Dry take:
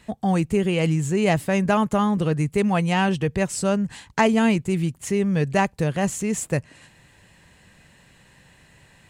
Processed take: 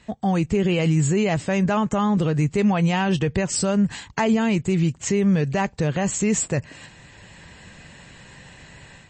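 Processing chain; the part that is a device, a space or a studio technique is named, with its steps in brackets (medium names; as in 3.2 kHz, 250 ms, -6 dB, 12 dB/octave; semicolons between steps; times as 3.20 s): low-bitrate web radio (level rider gain up to 9 dB; peak limiter -11.5 dBFS, peak gain reduction 10 dB; MP3 32 kbps 24 kHz)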